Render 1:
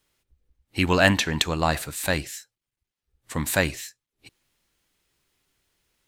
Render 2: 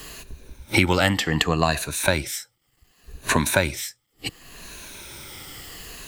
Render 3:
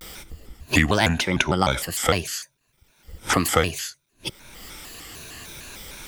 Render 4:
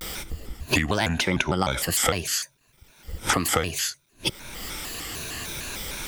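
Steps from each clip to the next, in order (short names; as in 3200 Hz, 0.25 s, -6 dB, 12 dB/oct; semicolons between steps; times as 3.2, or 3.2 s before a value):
moving spectral ripple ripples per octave 1.5, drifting -0.68 Hz, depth 10 dB; three-band squash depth 100%; gain +1.5 dB
shaped vibrato square 3.3 Hz, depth 250 cents
compressor 10:1, threshold -25 dBFS, peak gain reduction 13 dB; gain +6 dB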